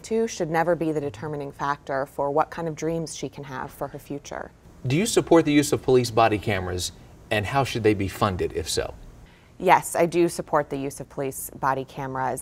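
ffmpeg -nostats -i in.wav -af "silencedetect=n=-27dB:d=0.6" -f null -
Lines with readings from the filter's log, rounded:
silence_start: 8.90
silence_end: 9.60 | silence_duration: 0.71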